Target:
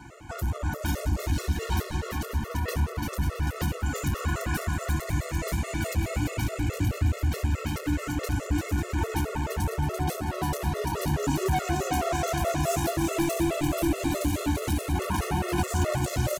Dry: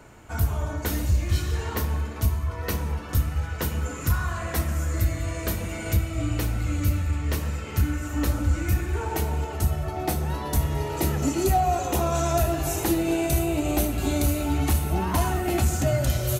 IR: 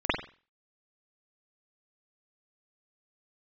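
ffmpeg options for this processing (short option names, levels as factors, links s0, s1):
-filter_complex "[0:a]highpass=f=41:p=1,equalizer=f=14000:t=o:w=0.62:g=-7,asoftclip=type=tanh:threshold=0.0335,aecho=1:1:340|544|666.4|739.8|783.9:0.631|0.398|0.251|0.158|0.1,asplit=2[s0][s1];[1:a]atrim=start_sample=2205[s2];[s1][s2]afir=irnorm=-1:irlink=0,volume=0.0531[s3];[s0][s3]amix=inputs=2:normalize=0,afftfilt=real='re*gt(sin(2*PI*4.7*pts/sr)*(1-2*mod(floor(b*sr/1024/360),2)),0)':imag='im*gt(sin(2*PI*4.7*pts/sr)*(1-2*mod(floor(b*sr/1024/360),2)),0)':win_size=1024:overlap=0.75,volume=1.88"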